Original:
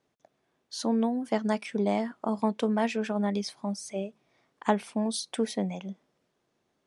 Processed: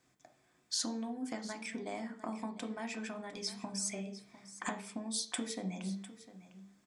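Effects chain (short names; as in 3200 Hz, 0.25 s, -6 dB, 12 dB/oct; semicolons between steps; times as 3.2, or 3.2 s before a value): low shelf 140 Hz +7 dB; notches 50/100/150/200/250/300/350/400/450 Hz; compressor 6:1, threshold -38 dBFS, peak gain reduction 19 dB; echo 0.703 s -15.5 dB; reverb RT60 0.45 s, pre-delay 3 ms, DRR 5.5 dB; gain +5 dB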